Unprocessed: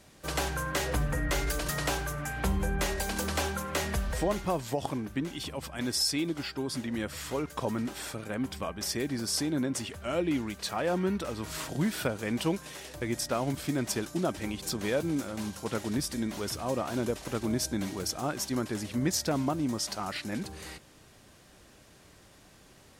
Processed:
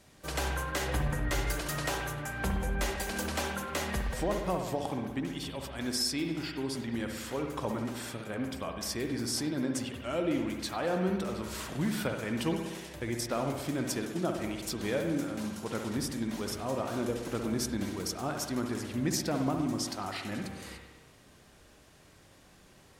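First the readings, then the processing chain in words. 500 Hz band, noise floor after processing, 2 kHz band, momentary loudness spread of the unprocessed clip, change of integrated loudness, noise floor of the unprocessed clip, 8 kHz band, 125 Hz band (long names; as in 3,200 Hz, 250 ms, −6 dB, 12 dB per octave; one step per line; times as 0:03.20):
−1.5 dB, −58 dBFS, −1.5 dB, 6 LU, −1.5 dB, −57 dBFS, −3.0 dB, −1.5 dB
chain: spring reverb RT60 1.2 s, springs 60 ms, chirp 40 ms, DRR 3.5 dB
level −3 dB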